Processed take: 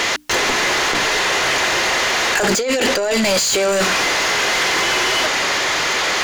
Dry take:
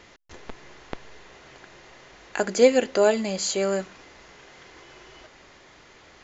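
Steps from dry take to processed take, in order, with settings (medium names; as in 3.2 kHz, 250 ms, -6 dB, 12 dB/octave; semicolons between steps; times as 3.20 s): treble shelf 4.5 kHz +6.5 dB; hum notches 60/120/180/240/300 Hz; compressor with a negative ratio -33 dBFS, ratio -1; overdrive pedal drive 36 dB, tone 5.9 kHz, clips at -8 dBFS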